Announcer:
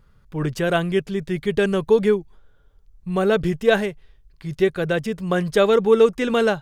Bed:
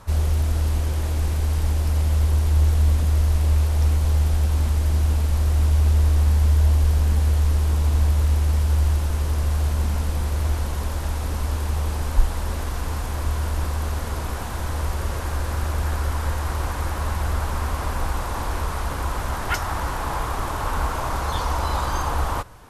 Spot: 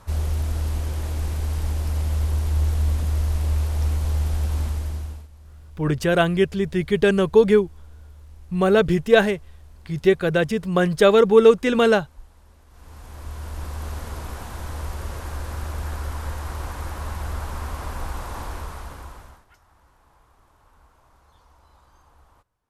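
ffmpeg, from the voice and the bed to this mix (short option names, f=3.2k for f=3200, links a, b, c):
-filter_complex "[0:a]adelay=5450,volume=2dB[a];[1:a]volume=17.5dB,afade=t=out:st=4.6:d=0.68:silence=0.0707946,afade=t=in:st=12.68:d=1.22:silence=0.0891251,afade=t=out:st=18.4:d=1.05:silence=0.0446684[b];[a][b]amix=inputs=2:normalize=0"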